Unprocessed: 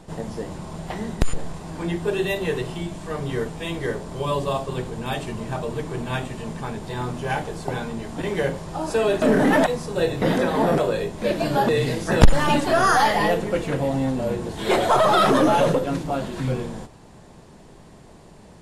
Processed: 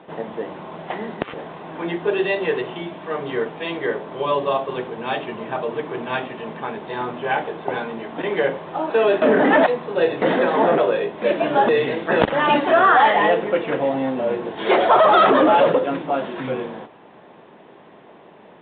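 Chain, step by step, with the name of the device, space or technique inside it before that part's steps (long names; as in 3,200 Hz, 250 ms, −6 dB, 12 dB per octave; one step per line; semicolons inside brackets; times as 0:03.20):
telephone (band-pass filter 320–3,400 Hz; soft clipping −6.5 dBFS, distortion −26 dB; level +5 dB; mu-law 64 kbit/s 8,000 Hz)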